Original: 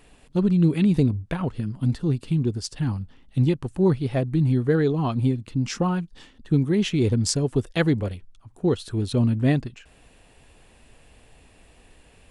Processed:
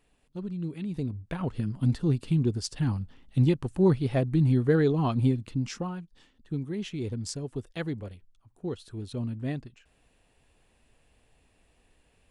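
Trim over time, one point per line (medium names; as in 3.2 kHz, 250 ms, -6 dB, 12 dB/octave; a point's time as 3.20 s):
0.86 s -15 dB
1.58 s -2 dB
5.46 s -2 dB
5.93 s -12 dB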